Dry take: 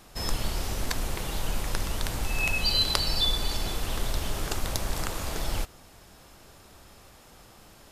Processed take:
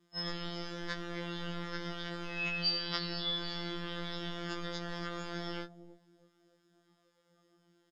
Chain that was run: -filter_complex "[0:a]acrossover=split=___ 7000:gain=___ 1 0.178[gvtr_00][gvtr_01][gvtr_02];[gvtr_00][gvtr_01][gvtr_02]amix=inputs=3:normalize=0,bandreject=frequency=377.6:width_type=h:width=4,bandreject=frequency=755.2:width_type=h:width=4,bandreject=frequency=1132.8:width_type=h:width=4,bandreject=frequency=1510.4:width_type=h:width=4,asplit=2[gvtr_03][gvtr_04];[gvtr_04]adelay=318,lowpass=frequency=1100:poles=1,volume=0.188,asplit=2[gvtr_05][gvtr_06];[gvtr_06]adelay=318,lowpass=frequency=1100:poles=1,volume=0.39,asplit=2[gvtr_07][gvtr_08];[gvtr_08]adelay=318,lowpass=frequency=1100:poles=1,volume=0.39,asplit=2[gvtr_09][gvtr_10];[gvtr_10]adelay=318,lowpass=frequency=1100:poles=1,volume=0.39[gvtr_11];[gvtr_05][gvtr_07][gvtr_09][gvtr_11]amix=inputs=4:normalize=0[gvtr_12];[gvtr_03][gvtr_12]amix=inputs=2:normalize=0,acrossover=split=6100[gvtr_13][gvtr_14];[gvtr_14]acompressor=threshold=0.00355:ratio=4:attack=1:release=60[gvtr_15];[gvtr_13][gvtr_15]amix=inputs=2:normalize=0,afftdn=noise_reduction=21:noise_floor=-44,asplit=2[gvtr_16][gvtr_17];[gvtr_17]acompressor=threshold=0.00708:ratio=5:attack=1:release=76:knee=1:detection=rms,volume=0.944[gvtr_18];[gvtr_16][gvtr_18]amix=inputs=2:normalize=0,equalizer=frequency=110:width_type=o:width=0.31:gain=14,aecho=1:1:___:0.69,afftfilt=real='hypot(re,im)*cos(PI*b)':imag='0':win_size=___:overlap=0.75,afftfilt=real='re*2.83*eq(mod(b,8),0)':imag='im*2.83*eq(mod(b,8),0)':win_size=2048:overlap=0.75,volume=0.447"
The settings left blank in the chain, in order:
150, 0.1, 6.4, 2048